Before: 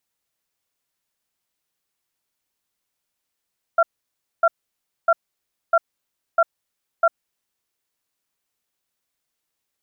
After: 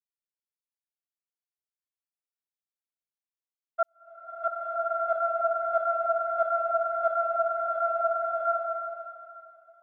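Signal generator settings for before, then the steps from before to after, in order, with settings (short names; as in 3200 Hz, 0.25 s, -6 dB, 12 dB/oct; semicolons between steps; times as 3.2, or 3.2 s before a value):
cadence 668 Hz, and 1370 Hz, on 0.05 s, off 0.60 s, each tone -14.5 dBFS 3.31 s
expander -9 dBFS; bloom reverb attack 1.42 s, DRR -6.5 dB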